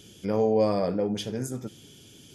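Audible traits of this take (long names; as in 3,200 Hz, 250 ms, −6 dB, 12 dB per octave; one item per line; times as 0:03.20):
background noise floor −52 dBFS
spectral slope −5.5 dB per octave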